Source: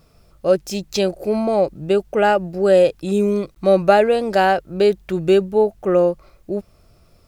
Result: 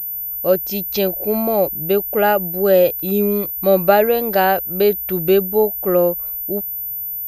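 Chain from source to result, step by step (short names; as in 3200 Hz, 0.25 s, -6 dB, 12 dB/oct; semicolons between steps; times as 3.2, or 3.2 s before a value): pulse-width modulation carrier 14000 Hz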